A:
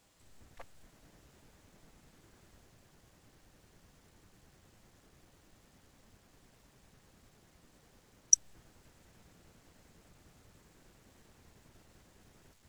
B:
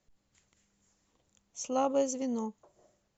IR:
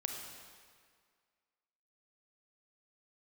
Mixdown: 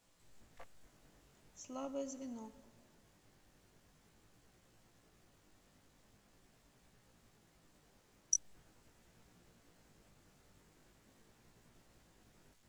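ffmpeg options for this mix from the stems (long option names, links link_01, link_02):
-filter_complex "[0:a]equalizer=frequency=75:width_type=o:width=0.66:gain=-6,alimiter=limit=-10.5dB:level=0:latency=1,flanger=delay=17:depth=3.6:speed=0.43,volume=-1.5dB[link_01];[1:a]aecho=1:1:3.1:0.65,volume=-17dB,asplit=2[link_02][link_03];[link_03]volume=-8.5dB[link_04];[2:a]atrim=start_sample=2205[link_05];[link_04][link_05]afir=irnorm=-1:irlink=0[link_06];[link_01][link_02][link_06]amix=inputs=3:normalize=0"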